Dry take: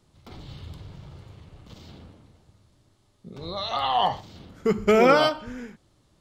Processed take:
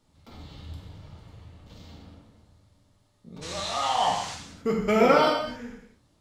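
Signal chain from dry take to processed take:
0:03.41–0:04.34: noise in a band 810–7,400 Hz −37 dBFS
reverb whose tail is shaped and stops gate 300 ms falling, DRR −1.5 dB
level −5.5 dB

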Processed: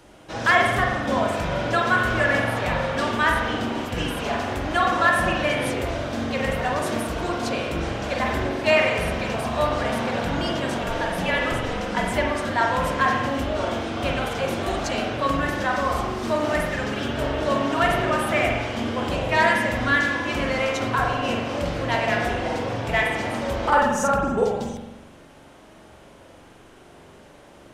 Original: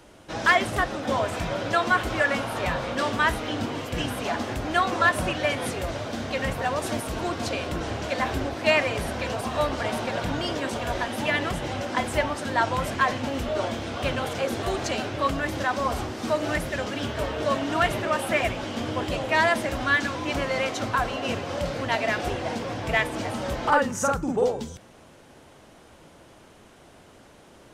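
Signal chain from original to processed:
spring reverb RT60 1.1 s, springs 43 ms, chirp 70 ms, DRR 0 dB
0:10.82–0:12.12: frequency shifter −45 Hz

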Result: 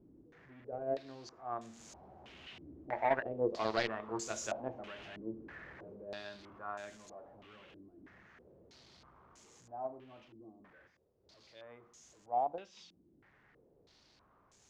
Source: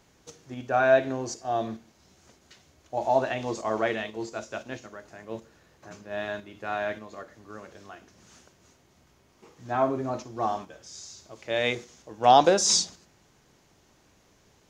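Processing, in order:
converter with a step at zero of −31 dBFS
source passing by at 0:04.20, 6 m/s, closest 7.2 metres
harmonic generator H 3 −10 dB, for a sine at −11.5 dBFS
in parallel at +2.5 dB: downward compressor, threshold −43 dBFS, peak gain reduction 17.5 dB
on the sum: soft clipping −25.5 dBFS, distortion −7 dB
low-pass on a step sequencer 3.1 Hz 310–7,000 Hz
level +3.5 dB

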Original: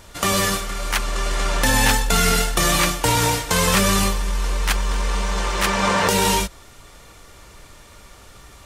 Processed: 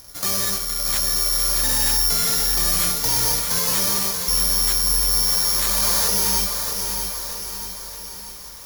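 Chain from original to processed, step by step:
0:03.59–0:04.28: high-pass filter 190 Hz 12 dB per octave
hard clipping −18.5 dBFS, distortion −9 dB
feedback delay with all-pass diffusion 1,016 ms, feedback 46%, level −14 dB
bad sample-rate conversion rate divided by 8×, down filtered, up zero stuff
feedback echo at a low word length 633 ms, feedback 55%, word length 5 bits, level −6 dB
level −7.5 dB

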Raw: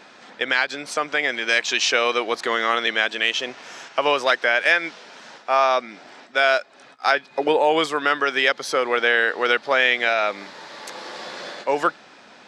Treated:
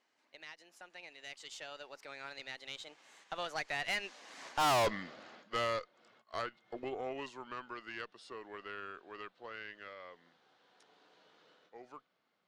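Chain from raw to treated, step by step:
source passing by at 0:04.73, 57 m/s, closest 4.8 metres
tube saturation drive 35 dB, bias 0.55
level +7.5 dB

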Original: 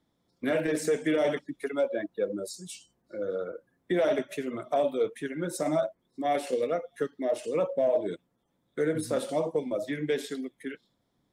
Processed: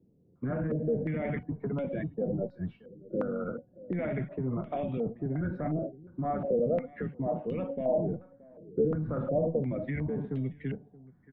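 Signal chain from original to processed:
sub-octave generator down 1 octave, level 0 dB
parametric band 170 Hz +13 dB 1.5 octaves
brickwall limiter −22.5 dBFS, peak gain reduction 15 dB
high-frequency loss of the air 400 metres
tuned comb filter 740 Hz, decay 0.43 s, mix 70%
single-tap delay 626 ms −21.5 dB
low-pass on a step sequencer 2.8 Hz 440–2,800 Hz
level +7.5 dB

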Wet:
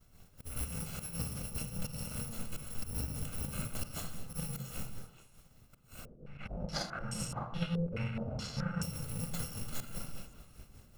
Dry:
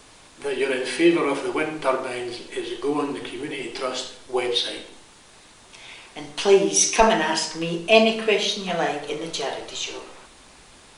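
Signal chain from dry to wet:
samples in bit-reversed order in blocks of 128 samples
log-companded quantiser 4 bits
volume swells 257 ms
downward expander −40 dBFS
downward compressor 8 to 1, threshold −33 dBFS, peak gain reduction 19 dB
tilt shelving filter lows +10 dB, about 860 Hz
echo through a band-pass that steps 106 ms, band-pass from 160 Hz, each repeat 1.4 octaves, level −3.5 dB
amplitude tremolo 5 Hz, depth 51%
convolution reverb RT60 0.35 s, pre-delay 41 ms, DRR 13.5 dB
0:06.05–0:08.83: low-pass on a step sequencer 4.7 Hz 450–7,800 Hz
level +4 dB

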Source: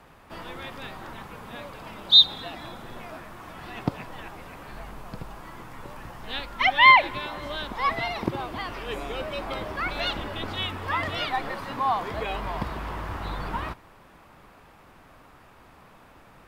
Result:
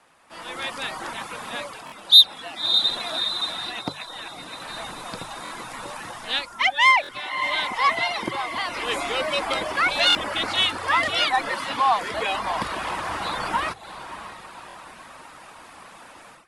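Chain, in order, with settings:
high-shelf EQ 2,900 Hz −5 dB
notch filter 410 Hz, Q 12
on a send: feedback delay with all-pass diffusion 594 ms, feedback 49%, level −13 dB
on the sum: automatic gain control gain up to 14 dB
reverb reduction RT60 0.5 s
in parallel at −4 dB: soft clipping −10 dBFS, distortion −14 dB
on the sum: Butterworth low-pass 11,000 Hz 72 dB per octave
RIAA equalisation recording
mains-hum notches 50/100/150 Hz
buffer that repeats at 0:01.85/0:05.44/0:07.02/0:10.08/0:14.68, samples 1,024, times 2
level −8.5 dB

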